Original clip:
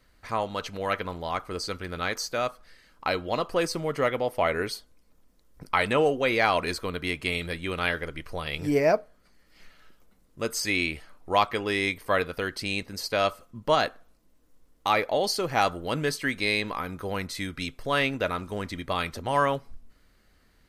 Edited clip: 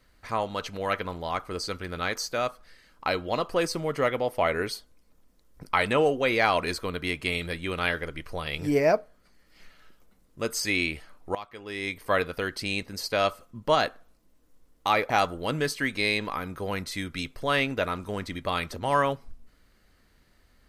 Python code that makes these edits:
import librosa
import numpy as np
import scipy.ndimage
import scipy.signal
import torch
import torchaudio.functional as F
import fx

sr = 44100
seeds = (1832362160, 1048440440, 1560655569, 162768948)

y = fx.edit(x, sr, fx.fade_in_from(start_s=11.35, length_s=0.72, curve='qua', floor_db=-18.5),
    fx.cut(start_s=15.1, length_s=0.43), tone=tone)